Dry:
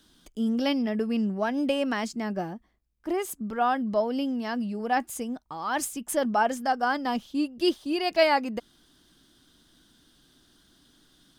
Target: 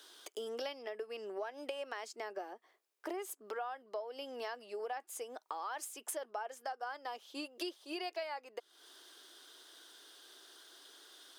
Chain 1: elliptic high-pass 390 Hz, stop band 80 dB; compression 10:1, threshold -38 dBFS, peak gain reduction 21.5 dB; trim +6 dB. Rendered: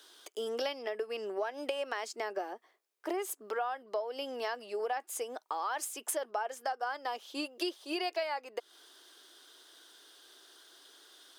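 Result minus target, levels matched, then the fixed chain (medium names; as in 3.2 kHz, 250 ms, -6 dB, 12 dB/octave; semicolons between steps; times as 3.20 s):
compression: peak gain reduction -6.5 dB
elliptic high-pass 390 Hz, stop band 80 dB; compression 10:1, threshold -45 dBFS, peak gain reduction 27.5 dB; trim +6 dB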